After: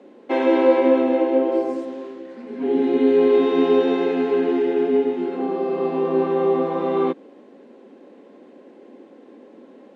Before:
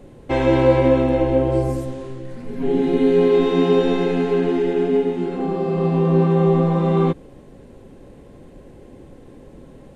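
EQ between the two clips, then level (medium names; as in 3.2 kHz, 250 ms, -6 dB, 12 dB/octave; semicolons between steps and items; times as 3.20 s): steep high-pass 220 Hz 48 dB/octave; distance through air 130 m; 0.0 dB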